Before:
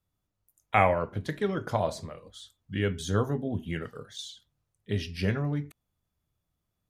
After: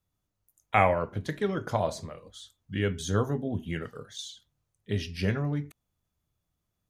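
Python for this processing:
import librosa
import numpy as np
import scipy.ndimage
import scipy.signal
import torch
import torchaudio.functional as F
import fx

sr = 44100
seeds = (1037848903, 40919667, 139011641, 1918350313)

y = fx.peak_eq(x, sr, hz=6400.0, db=3.5, octaves=0.22)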